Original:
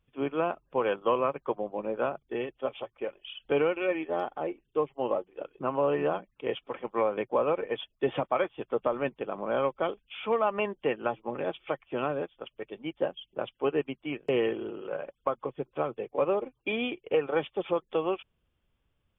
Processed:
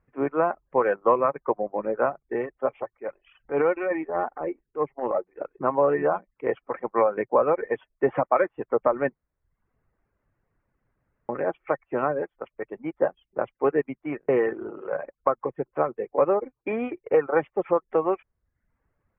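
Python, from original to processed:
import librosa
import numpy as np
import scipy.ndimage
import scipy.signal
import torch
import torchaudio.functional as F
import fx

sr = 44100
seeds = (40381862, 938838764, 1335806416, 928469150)

y = fx.transient(x, sr, attack_db=-11, sustain_db=1, at=(2.94, 5.4))
y = fx.edit(y, sr, fx.room_tone_fill(start_s=9.15, length_s=2.14), tone=tone)
y = fx.dereverb_blind(y, sr, rt60_s=0.6)
y = scipy.signal.sosfilt(scipy.signal.ellip(4, 1.0, 60, 2000.0, 'lowpass', fs=sr, output='sos'), y)
y = fx.low_shelf(y, sr, hz=350.0, db=-4.5)
y = y * 10.0 ** (8.0 / 20.0)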